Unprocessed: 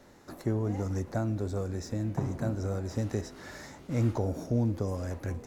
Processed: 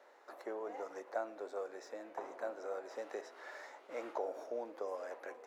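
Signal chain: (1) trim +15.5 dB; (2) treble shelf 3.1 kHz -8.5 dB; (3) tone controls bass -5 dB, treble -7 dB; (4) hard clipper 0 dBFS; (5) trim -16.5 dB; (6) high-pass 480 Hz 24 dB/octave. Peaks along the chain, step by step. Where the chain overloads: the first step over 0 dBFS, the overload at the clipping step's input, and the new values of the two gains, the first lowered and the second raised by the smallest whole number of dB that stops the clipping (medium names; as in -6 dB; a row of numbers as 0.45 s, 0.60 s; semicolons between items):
-1.5 dBFS, -2.0 dBFS, -4.0 dBFS, -4.0 dBFS, -20.5 dBFS, -26.0 dBFS; nothing clips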